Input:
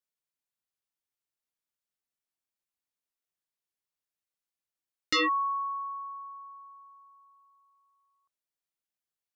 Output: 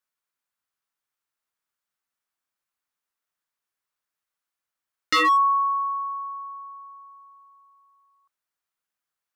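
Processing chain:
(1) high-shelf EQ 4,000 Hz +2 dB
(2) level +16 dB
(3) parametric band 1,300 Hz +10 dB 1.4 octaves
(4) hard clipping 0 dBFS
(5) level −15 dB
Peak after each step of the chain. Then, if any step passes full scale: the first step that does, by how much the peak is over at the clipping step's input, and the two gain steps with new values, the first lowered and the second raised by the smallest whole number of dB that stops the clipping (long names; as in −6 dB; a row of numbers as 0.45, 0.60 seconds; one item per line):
−19.5, −3.5, +4.5, 0.0, −15.0 dBFS
step 3, 4.5 dB
step 2 +11 dB, step 5 −10 dB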